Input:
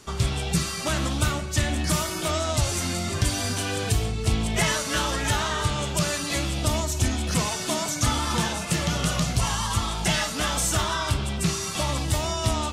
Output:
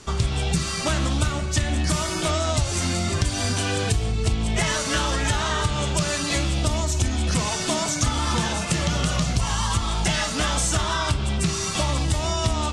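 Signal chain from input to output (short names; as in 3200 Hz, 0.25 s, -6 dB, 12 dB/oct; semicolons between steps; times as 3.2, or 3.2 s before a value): LPF 9600 Hz 24 dB/oct; low shelf 67 Hz +7 dB; compressor 4:1, threshold -23 dBFS, peak gain reduction 7.5 dB; gain +4 dB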